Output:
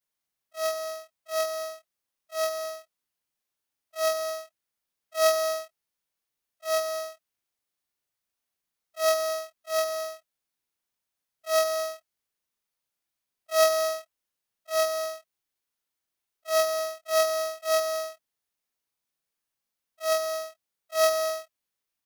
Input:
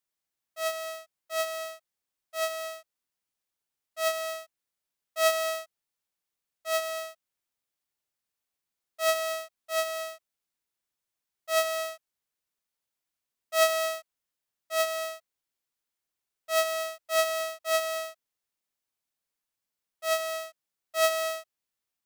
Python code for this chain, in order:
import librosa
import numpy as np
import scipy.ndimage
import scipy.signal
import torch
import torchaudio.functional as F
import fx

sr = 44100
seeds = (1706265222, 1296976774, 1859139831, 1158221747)

y = fx.frame_reverse(x, sr, frame_ms=78.0)
y = fx.notch(y, sr, hz=7500.0, q=19.0)
y = y * 10.0 ** (4.5 / 20.0)